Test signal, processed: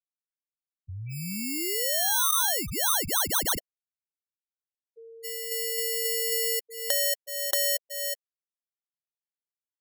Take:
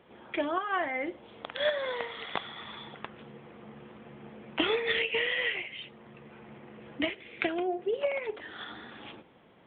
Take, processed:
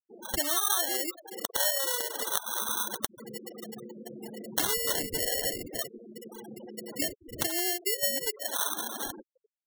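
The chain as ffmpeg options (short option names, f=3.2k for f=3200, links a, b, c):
-filter_complex "[0:a]highpass=190,asplit=2[a][b];[b]adelay=370,highpass=300,lowpass=3.4k,asoftclip=type=hard:threshold=-21.5dB,volume=-20dB[c];[a][c]amix=inputs=2:normalize=0,acrusher=samples=18:mix=1:aa=0.000001,apsyclip=24.5dB,acompressor=threshold=-19dB:ratio=6,crystalizer=i=7:c=0,afftfilt=real='re*gte(hypot(re,im),0.2)':imag='im*gte(hypot(re,im),0.2)':win_size=1024:overlap=0.75,volume=-16dB"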